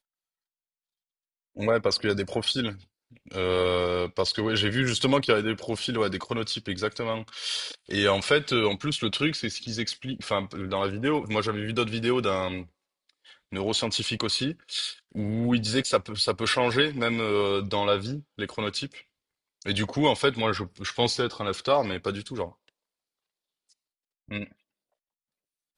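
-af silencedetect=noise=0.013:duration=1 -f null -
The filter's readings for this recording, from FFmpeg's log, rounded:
silence_start: 0.00
silence_end: 1.57 | silence_duration: 1.57
silence_start: 22.49
silence_end: 24.31 | silence_duration: 1.82
silence_start: 24.45
silence_end: 25.77 | silence_duration: 1.33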